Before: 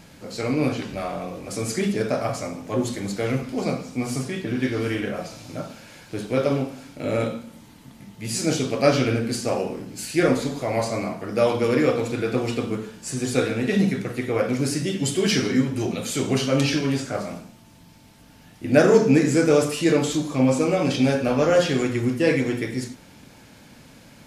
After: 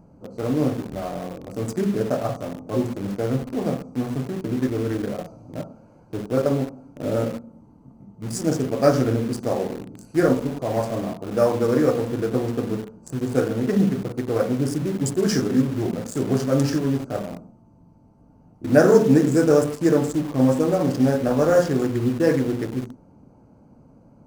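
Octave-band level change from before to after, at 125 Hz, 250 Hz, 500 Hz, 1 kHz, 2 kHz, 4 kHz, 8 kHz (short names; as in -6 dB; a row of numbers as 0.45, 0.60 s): +1.5, +1.0, +1.0, -0.5, -5.0, -7.5, -5.0 dB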